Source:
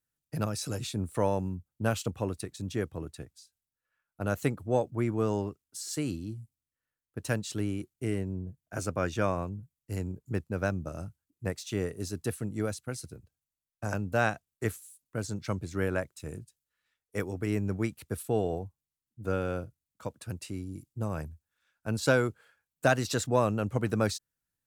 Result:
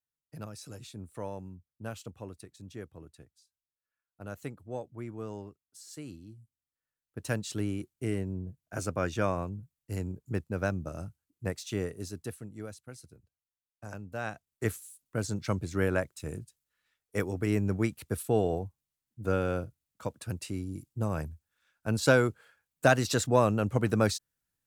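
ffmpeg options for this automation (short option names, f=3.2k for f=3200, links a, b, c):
-af "volume=11.5dB,afade=t=in:st=6.38:d=1.1:silence=0.298538,afade=t=out:st=11.71:d=0.78:silence=0.334965,afade=t=in:st=14.23:d=0.54:silence=0.251189"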